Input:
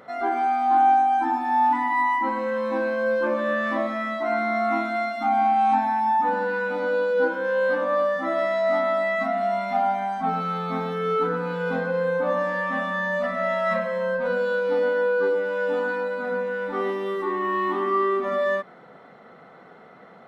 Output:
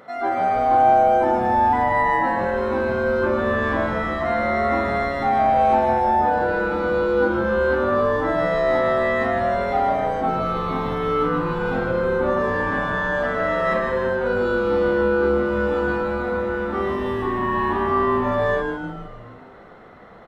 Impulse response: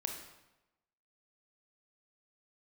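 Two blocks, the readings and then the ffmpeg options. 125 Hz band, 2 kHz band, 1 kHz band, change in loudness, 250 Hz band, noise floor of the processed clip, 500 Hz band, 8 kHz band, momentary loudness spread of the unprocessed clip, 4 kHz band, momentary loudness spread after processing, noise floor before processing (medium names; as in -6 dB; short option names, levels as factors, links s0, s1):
+9.0 dB, +2.5 dB, +2.0 dB, +3.0 dB, +6.0 dB, -41 dBFS, +3.0 dB, no reading, 6 LU, +3.0 dB, 6 LU, -48 dBFS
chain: -filter_complex "[0:a]asplit=9[s0][s1][s2][s3][s4][s5][s6][s7][s8];[s1]adelay=154,afreqshift=-140,volume=0.531[s9];[s2]adelay=308,afreqshift=-280,volume=0.32[s10];[s3]adelay=462,afreqshift=-420,volume=0.191[s11];[s4]adelay=616,afreqshift=-560,volume=0.115[s12];[s5]adelay=770,afreqshift=-700,volume=0.0692[s13];[s6]adelay=924,afreqshift=-840,volume=0.0412[s14];[s7]adelay=1078,afreqshift=-980,volume=0.0248[s15];[s8]adelay=1232,afreqshift=-1120,volume=0.0148[s16];[s0][s9][s10][s11][s12][s13][s14][s15][s16]amix=inputs=9:normalize=0,volume=1.19"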